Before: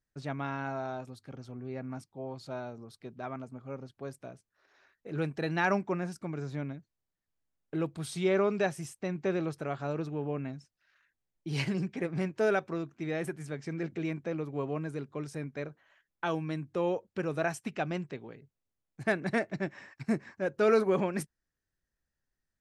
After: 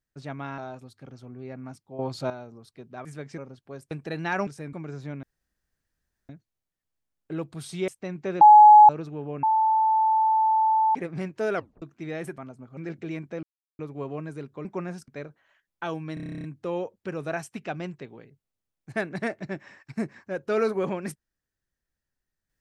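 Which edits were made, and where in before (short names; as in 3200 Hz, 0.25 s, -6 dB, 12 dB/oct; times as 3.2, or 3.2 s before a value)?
0.58–0.84 cut
2.25–2.56 gain +10.5 dB
3.31–3.7 swap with 13.38–13.71
4.23–5.23 cut
5.79–6.22 swap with 15.23–15.49
6.72 insert room tone 1.06 s
8.31–8.88 cut
9.41–9.89 bleep 845 Hz -7.5 dBFS
10.43–11.95 bleep 879 Hz -18 dBFS
12.55 tape stop 0.27 s
14.37 insert silence 0.36 s
16.55 stutter 0.03 s, 11 plays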